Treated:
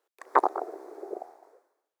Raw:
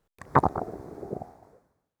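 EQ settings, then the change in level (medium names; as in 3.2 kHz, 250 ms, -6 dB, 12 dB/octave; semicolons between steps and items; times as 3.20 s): elliptic high-pass 350 Hz, stop band 70 dB; 0.0 dB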